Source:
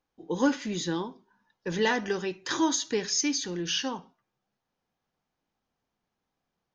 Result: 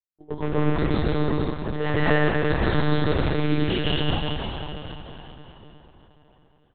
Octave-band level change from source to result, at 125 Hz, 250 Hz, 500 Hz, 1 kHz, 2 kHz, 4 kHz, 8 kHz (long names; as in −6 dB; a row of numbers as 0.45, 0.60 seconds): +17.5 dB, +5.0 dB, +6.5 dB, +5.0 dB, +5.5 dB, +1.5 dB, can't be measured